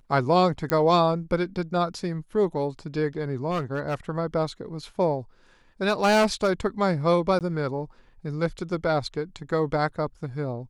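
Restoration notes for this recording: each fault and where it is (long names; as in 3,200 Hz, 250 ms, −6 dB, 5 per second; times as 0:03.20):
0:00.70: click −9 dBFS
0:03.50–0:03.95: clipping −22.5 dBFS
0:05.88–0:06.50: clipping −15.5 dBFS
0:07.39–0:07.41: drop-out 18 ms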